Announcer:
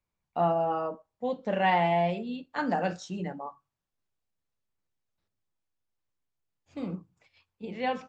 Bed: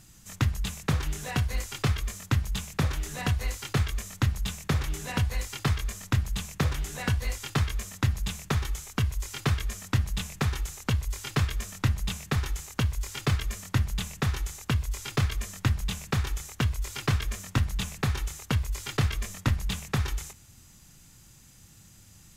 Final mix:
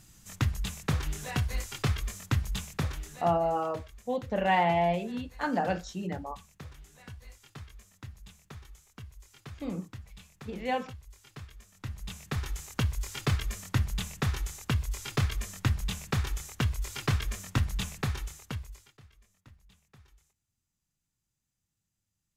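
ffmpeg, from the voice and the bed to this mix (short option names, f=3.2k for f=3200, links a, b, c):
-filter_complex "[0:a]adelay=2850,volume=-0.5dB[a];[1:a]volume=15dB,afade=t=out:st=2.61:d=0.78:silence=0.141254,afade=t=in:st=11.72:d=1.04:silence=0.133352,afade=t=out:st=17.85:d=1.08:silence=0.0375837[b];[a][b]amix=inputs=2:normalize=0"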